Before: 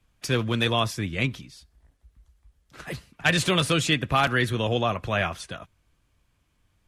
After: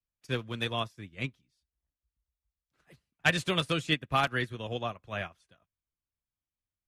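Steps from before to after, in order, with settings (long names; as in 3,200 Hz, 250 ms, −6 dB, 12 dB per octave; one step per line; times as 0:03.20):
expander for the loud parts 2.5 to 1, over −36 dBFS
level −2 dB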